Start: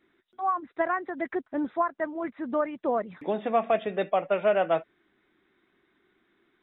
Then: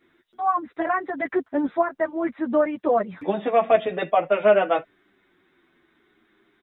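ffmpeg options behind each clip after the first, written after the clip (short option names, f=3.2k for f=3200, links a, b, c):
-filter_complex "[0:a]asplit=2[a][b];[b]adelay=8.7,afreqshift=-0.54[c];[a][c]amix=inputs=2:normalize=1,volume=8.5dB"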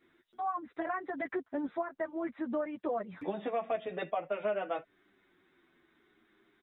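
-af "acompressor=threshold=-29dB:ratio=2.5,volume=-5.5dB"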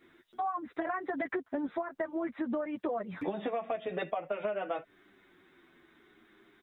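-af "acompressor=threshold=-37dB:ratio=6,volume=6.5dB"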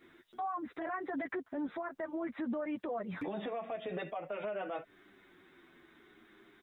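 -af "alimiter=level_in=7.5dB:limit=-24dB:level=0:latency=1:release=43,volume=-7.5dB,volume=1dB"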